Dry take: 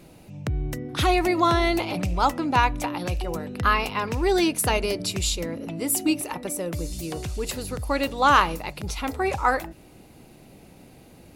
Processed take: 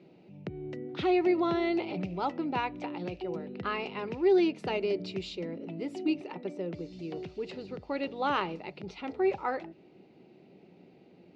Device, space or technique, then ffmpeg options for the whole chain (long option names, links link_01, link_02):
kitchen radio: -filter_complex "[0:a]asettb=1/sr,asplit=3[link_01][link_02][link_03];[link_01]atrim=end=6.164[link_04];[link_02]atrim=start=6.16:end=8.16,asetpts=PTS-STARTPTS,afade=type=in:duration=0.004:curve=qsin,afade=type=out:start_time=1.996:duration=0.004:curve=qsin,lowpass=8200[link_05];[link_03]atrim=start=8.156[link_06];[link_04][link_05]acrossfade=duration=0.004:curve1=hsin:curve2=qsin[link_07];[link_07][link_06]acrossfade=duration=0.004:curve1=qsin:curve2=hsin,highpass=180,equalizer=frequency=180:width_type=q:width=4:gain=7,equalizer=frequency=380:width_type=q:width=4:gain=9,equalizer=frequency=1100:width_type=q:width=4:gain=-7,equalizer=frequency=1600:width_type=q:width=4:gain=-6,equalizer=frequency=3500:width_type=q:width=4:gain=-4,lowpass=frequency=4000:width=0.5412,lowpass=frequency=4000:width=1.3066,volume=-8.5dB"